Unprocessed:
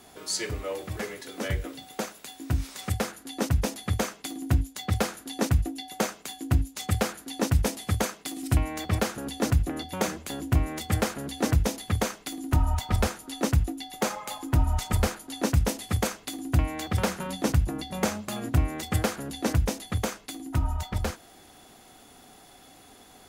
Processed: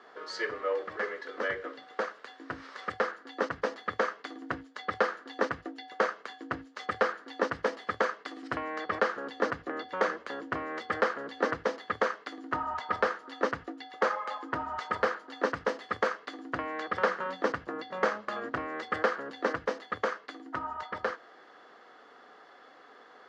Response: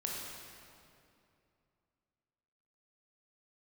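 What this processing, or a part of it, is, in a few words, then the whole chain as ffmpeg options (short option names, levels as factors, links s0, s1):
phone earpiece: -af "highpass=450,equalizer=f=480:t=q:w=4:g=7,equalizer=f=750:t=q:w=4:g=-4,equalizer=f=1200:t=q:w=4:g=8,equalizer=f=1700:t=q:w=4:g=7,equalizer=f=2500:t=q:w=4:g=-9,equalizer=f=3600:t=q:w=4:g=-8,lowpass=f=3900:w=0.5412,lowpass=f=3900:w=1.3066"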